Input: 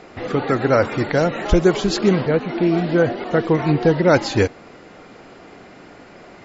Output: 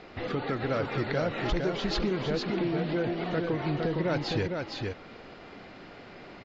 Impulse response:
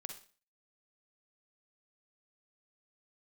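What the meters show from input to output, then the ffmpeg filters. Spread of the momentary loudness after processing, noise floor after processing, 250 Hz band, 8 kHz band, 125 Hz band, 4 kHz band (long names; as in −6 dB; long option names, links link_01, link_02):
18 LU, −48 dBFS, −11.5 dB, can't be measured, −10.5 dB, −6.5 dB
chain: -filter_complex "[0:a]acompressor=threshold=-21dB:ratio=3,lowshelf=frequency=92:gain=7,asoftclip=type=tanh:threshold=-13.5dB,lowpass=frequency=4500:width=0.5412,lowpass=frequency=4500:width=1.3066,highshelf=frequency=3500:gain=10,asplit=2[link_01][link_02];[link_02]aecho=0:1:459:0.631[link_03];[link_01][link_03]amix=inputs=2:normalize=0,volume=-7dB"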